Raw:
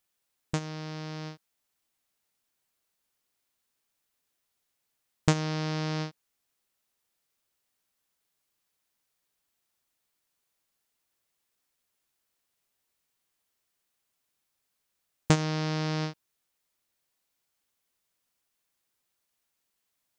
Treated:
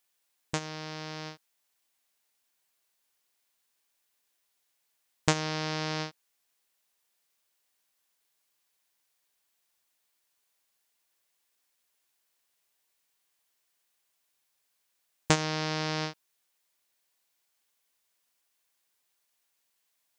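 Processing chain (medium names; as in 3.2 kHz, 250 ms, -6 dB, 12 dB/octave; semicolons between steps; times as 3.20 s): bass shelf 340 Hz -11 dB; band-stop 1.3 kHz, Q 16; trim +3.5 dB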